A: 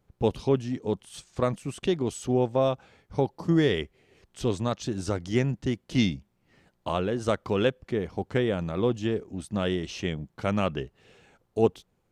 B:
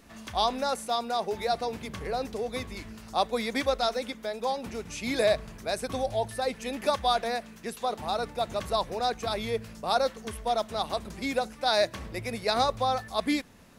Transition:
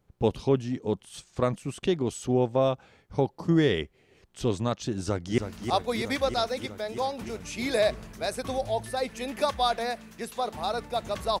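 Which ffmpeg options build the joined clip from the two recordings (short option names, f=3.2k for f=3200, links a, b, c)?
-filter_complex "[0:a]apad=whole_dur=11.4,atrim=end=11.4,atrim=end=5.382[a];[1:a]atrim=start=2.828:end=8.85[b];[a][b]acrossfade=d=0.004:c1=hsin:c2=hsin,asplit=2[c][d];[d]afade=t=in:st=4.97:d=0.01,afade=t=out:st=5.38:d=0.01,aecho=0:1:320|640|960|1280|1600|1920|2240|2560|2880|3200|3520|3840:0.398107|0.318486|0.254789|0.203831|0.163065|0.130452|0.104361|0.0834891|0.0667913|0.053433|0.0427464|0.0341971[e];[c][e]amix=inputs=2:normalize=0"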